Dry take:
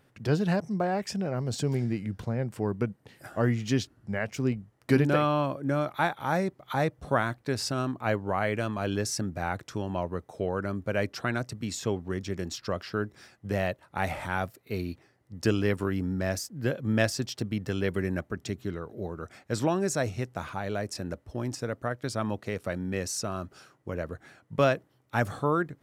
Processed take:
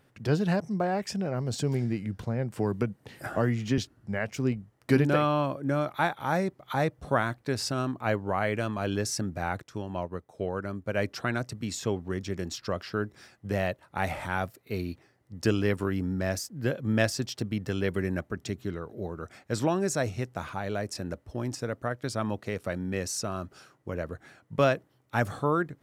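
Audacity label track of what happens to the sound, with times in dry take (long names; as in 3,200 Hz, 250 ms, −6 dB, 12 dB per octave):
2.570000	3.780000	multiband upward and downward compressor depth 70%
9.620000	10.980000	expander for the loud parts, over −41 dBFS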